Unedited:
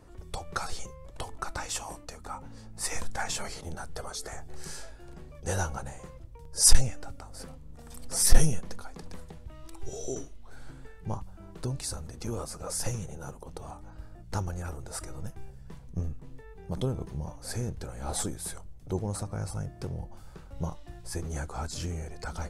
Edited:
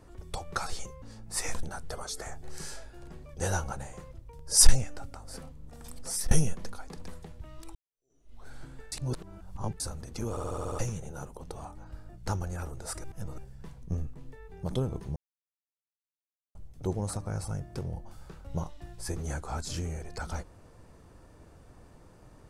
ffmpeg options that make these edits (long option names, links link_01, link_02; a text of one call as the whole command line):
ffmpeg -i in.wav -filter_complex "[0:a]asplit=18[link_01][link_02][link_03][link_04][link_05][link_06][link_07][link_08][link_09][link_10][link_11][link_12][link_13][link_14][link_15][link_16][link_17][link_18];[link_01]atrim=end=1.022[link_19];[link_02]atrim=start=2.488:end=3.102[link_20];[link_03]atrim=start=3.688:end=8.37,asetpts=PTS-STARTPTS,afade=type=out:start_time=4.272:duration=0.41:silence=0.0749894[link_21];[link_04]atrim=start=8.37:end=9.81,asetpts=PTS-STARTPTS,afade=type=in:duration=0.004:curve=hsin:silence=0.0749894,afade=type=out:start_time=1.436:duration=0.004:curve=hsin[link_22];[link_05]atrim=start=9.81:end=10.982,asetpts=PTS-STARTPTS,afade=type=in:duration=0.58:curve=exp[link_23];[link_06]atrim=start=10.978:end=11.862,asetpts=PTS-STARTPTS,areverse[link_24];[link_07]atrim=start=11.858:end=12.432[link_25];[link_08]atrim=start=12.358:end=12.432[link_26];[link_09]atrim=start=12.358:end=12.432[link_27];[link_10]atrim=start=12.358:end=12.432[link_28];[link_11]atrim=start=12.358:end=12.432[link_29];[link_12]atrim=start=12.358:end=12.432[link_30];[link_13]atrim=start=12.358:end=12.432[link_31];[link_14]atrim=start=12.848:end=15.102[link_32];[link_15]atrim=start=15.098:end=15.442,asetpts=PTS-STARTPTS,areverse[link_33];[link_16]atrim=start=15.438:end=17.22,asetpts=PTS-STARTPTS,afade=type=out:start_time=1.778:duration=0.004:curve=hsin[link_34];[link_17]atrim=start=17.22:end=18.61,asetpts=PTS-STARTPTS,volume=0[link_35];[link_18]atrim=start=18.61,asetpts=PTS-STARTPTS,afade=type=in:duration=0.004:curve=hsin[link_36];[link_19][link_20]acrossfade=duration=0.004:curve1=hsin:curve2=hsin[link_37];[link_21][link_22][link_23]concat=n=3:v=0:a=1[link_38];[link_37][link_38]acrossfade=duration=0.004:curve1=hsin:curve2=hsin[link_39];[link_39][link_24]acrossfade=duration=0.004:curve1=hsin:curve2=hsin[link_40];[link_40][link_25]acrossfade=duration=0.004:curve1=hsin:curve2=hsin[link_41];[link_41][link_26]acrossfade=duration=0.004:curve1=hsin:curve2=hsin[link_42];[link_42][link_27]acrossfade=duration=0.004:curve1=hsin:curve2=hsin[link_43];[link_43][link_28]acrossfade=duration=0.004:curve1=hsin:curve2=hsin[link_44];[link_44][link_29]acrossfade=duration=0.004:curve1=hsin:curve2=hsin[link_45];[link_45][link_30]acrossfade=duration=0.004:curve1=hsin:curve2=hsin[link_46];[link_46][link_31]acrossfade=duration=0.004:curve1=hsin:curve2=hsin[link_47];[link_47][link_32]acrossfade=duration=0.004:curve1=hsin:curve2=hsin[link_48];[link_48][link_33]acrossfade=duration=0.004:curve1=hsin:curve2=hsin[link_49];[link_34][link_35][link_36]concat=n=3:v=0:a=1[link_50];[link_49][link_50]acrossfade=duration=0.004:curve1=hsin:curve2=hsin" out.wav